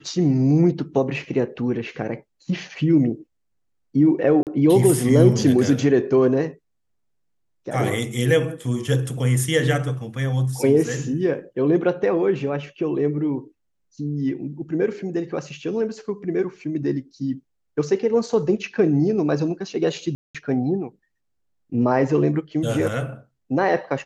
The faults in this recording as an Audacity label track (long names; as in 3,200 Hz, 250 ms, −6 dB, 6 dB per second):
4.430000	4.470000	drop-out 38 ms
20.150000	20.350000	drop-out 196 ms